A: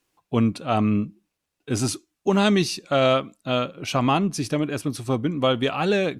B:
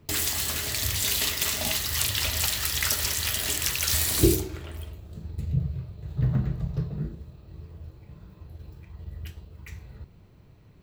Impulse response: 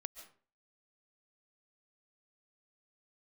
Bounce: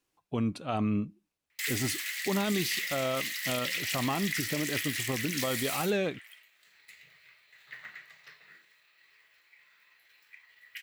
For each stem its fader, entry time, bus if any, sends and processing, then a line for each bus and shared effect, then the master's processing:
-7.0 dB, 0.00 s, no send, dry
-1.5 dB, 1.50 s, no send, resonant high-pass 2000 Hz, resonance Q 5; auto duck -8 dB, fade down 1.85 s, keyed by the first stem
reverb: off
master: limiter -20 dBFS, peak gain reduction 8 dB

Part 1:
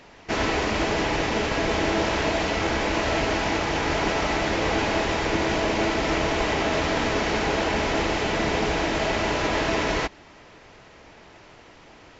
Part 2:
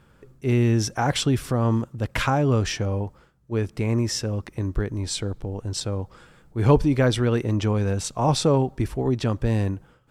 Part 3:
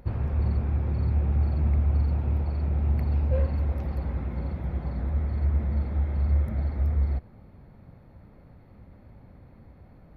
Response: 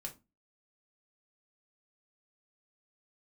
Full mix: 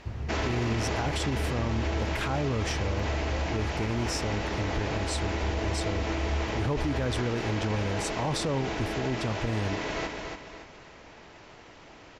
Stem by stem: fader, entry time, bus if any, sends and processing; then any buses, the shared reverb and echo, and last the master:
-1.5 dB, 0.00 s, no send, echo send -12 dB, auto duck -9 dB, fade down 1.90 s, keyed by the second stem
-5.5 dB, 0.00 s, no send, no echo send, dry
-7.0 dB, 0.00 s, no send, no echo send, dry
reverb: off
echo: feedback echo 0.284 s, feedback 36%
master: limiter -20 dBFS, peak gain reduction 10.5 dB

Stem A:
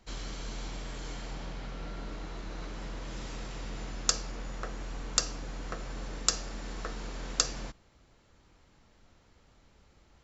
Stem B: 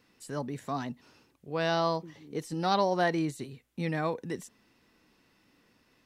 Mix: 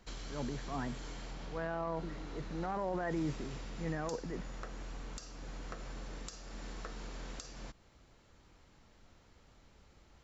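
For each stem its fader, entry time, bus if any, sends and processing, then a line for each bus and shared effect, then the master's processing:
-0.5 dB, 0.00 s, no send, compressor 2.5:1, threshold -43 dBFS, peak gain reduction 15.5 dB
-3.5 dB, 0.00 s, no send, Chebyshev band-pass 120–1800 Hz, order 3; transient shaper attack -9 dB, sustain +6 dB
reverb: off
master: limiter -27 dBFS, peak gain reduction 10.5 dB

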